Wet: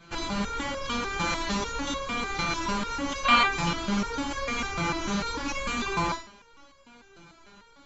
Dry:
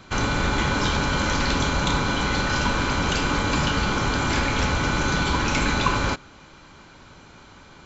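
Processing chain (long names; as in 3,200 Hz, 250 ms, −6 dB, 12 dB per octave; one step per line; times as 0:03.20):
flutter between parallel walls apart 10.1 metres, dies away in 0.42 s
gain on a spectral selection 0:03.25–0:03.47, 500–4,700 Hz +12 dB
step-sequenced resonator 6.7 Hz 170–550 Hz
level +7 dB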